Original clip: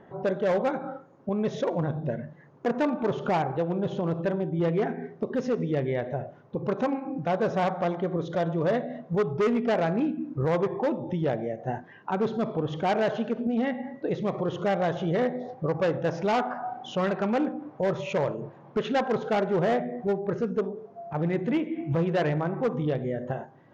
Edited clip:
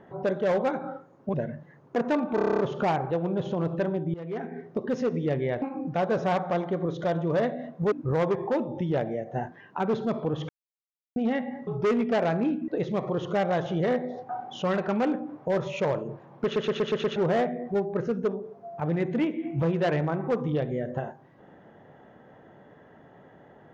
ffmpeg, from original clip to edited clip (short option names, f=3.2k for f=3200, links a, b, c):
-filter_complex "[0:a]asplit=24[a][b][c][d][e][f][g][h][i][j][k][l][m][n][o][p][q][r][s][t][u][v][w][x];[a]atrim=end=1.342[y];[b]atrim=start=2.038:end=3.082[z];[c]atrim=start=3.048:end=3.082[aa];[d]atrim=start=3.048:end=3.082[ab];[e]atrim=start=3.048:end=3.082[ac];[f]atrim=start=3.048:end=3.082[ad];[g]atrim=start=3.048:end=3.082[ae];[h]atrim=start=3.048:end=3.082[af];[i]atrim=start=3.048:end=3.082[ag];[j]atrim=start=3.048:end=4.6,asetpts=PTS-STARTPTS,afade=t=out:st=1.548:d=0.004:c=hsin:silence=0.112202[ah];[k]atrim=start=4.6:end=6.082,asetpts=PTS-STARTPTS,afade=t=in:d=0.56:silence=0.112202[ai];[l]atrim=start=6.928:end=9.232[aj];[m]atrim=start=10.238:end=12.81,asetpts=PTS-STARTPTS,afade=t=out:st=2.568:d=0.004:c=hsin[ak];[n]atrim=start=12.81:end=13.48,asetpts=PTS-STARTPTS,volume=0[al];[o]atrim=start=13.48:end=13.992,asetpts=PTS-STARTPTS,afade=t=in:d=0.004:c=hsin[am];[p]atrim=start=9.228:end=10.242[an];[q]atrim=start=13.988:end=15.602[ao];[r]atrim=start=16.618:end=18.892[ap];[s]atrim=start=18.768:end=18.892[aq];[t]atrim=start=18.768:end=18.892[ar];[u]atrim=start=18.768:end=18.892[as];[v]atrim=start=18.768:end=18.892[at];[w]atrim=start=18.768:end=18.892[au];[x]atrim=start=19.488[av];[y][z]acrossfade=d=0.004:c1=hsin:c2=hsin[aw];[aw][aa]acrossfade=d=0.004:c1=hsin:c2=hsin[ax];[ax][ab]acrossfade=d=0.004:c1=hsin:c2=hsin[ay];[ay][ac]acrossfade=d=0.004:c1=hsin:c2=hsin[az];[az][ad]acrossfade=d=0.004:c1=hsin:c2=hsin[ba];[ba][ae]acrossfade=d=0.004:c1=hsin:c2=hsin[bb];[bb][af]acrossfade=d=0.004:c1=hsin:c2=hsin[bc];[bc][ag]acrossfade=d=0.004:c1=hsin:c2=hsin[bd];[ah][ai]concat=n=2:v=0:a=1[be];[bd][be]acrossfade=d=0.004:c1=hsin:c2=hsin[bf];[bf][aj]acrossfade=d=0.004:c1=hsin:c2=hsin[bg];[ak][al][am]concat=n=3:v=0:a=1[bh];[bg][bh]acrossfade=d=0.004:c1=hsin:c2=hsin[bi];[bi][an]acrossfade=d=0.004:c1=hsin:c2=hsin[bj];[bj][ao]acrossfade=d=0.004:c1=hsin:c2=hsin[bk];[bk][ap]acrossfade=d=0.004:c1=hsin:c2=hsin[bl];[bl][aq]acrossfade=d=0.004:c1=hsin:c2=hsin[bm];[bm][ar]acrossfade=d=0.004:c1=hsin:c2=hsin[bn];[bn][as]acrossfade=d=0.004:c1=hsin:c2=hsin[bo];[bo][at]acrossfade=d=0.004:c1=hsin:c2=hsin[bp];[bp][au]acrossfade=d=0.004:c1=hsin:c2=hsin[bq];[bq][av]acrossfade=d=0.004:c1=hsin:c2=hsin"